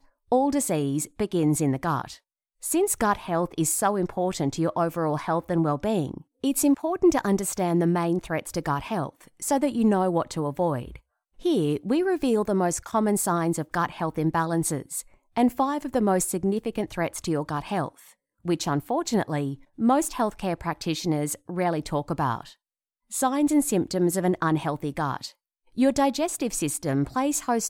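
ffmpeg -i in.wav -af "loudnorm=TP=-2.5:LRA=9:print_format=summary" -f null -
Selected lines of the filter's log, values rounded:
Input Integrated:    -25.7 LUFS
Input True Peak:      -9.2 dBTP
Input LRA:             2.4 LU
Input Threshold:     -35.9 LUFS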